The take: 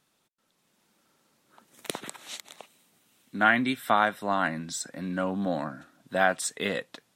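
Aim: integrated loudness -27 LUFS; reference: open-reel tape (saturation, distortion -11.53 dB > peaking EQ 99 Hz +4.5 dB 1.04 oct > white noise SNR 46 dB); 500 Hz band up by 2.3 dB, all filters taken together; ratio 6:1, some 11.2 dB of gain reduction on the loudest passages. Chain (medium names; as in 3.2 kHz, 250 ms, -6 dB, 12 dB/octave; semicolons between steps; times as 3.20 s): peaking EQ 500 Hz +3 dB; compression 6:1, threshold -28 dBFS; saturation -27.5 dBFS; peaking EQ 99 Hz +4.5 dB 1.04 oct; white noise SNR 46 dB; trim +10 dB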